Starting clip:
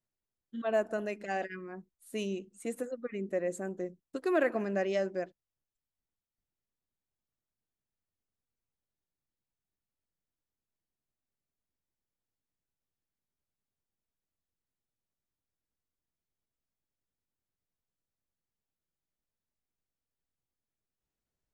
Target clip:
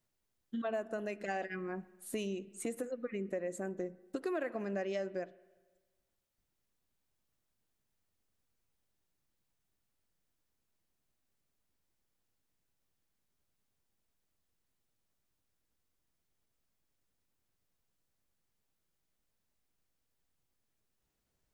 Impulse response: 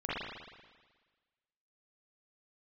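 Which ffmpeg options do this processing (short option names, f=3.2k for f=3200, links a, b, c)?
-filter_complex "[0:a]acompressor=threshold=-44dB:ratio=4,asplit=2[a][b];[1:a]atrim=start_sample=2205[c];[b][c]afir=irnorm=-1:irlink=0,volume=-25.5dB[d];[a][d]amix=inputs=2:normalize=0,volume=7dB"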